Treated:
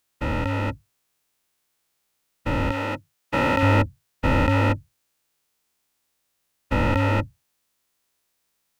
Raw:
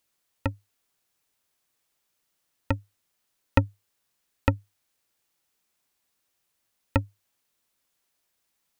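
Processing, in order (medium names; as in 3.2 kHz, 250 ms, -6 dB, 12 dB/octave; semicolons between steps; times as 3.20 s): every event in the spectrogram widened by 480 ms; 2.71–3.63 s: high-pass 300 Hz 6 dB/octave; trim -3.5 dB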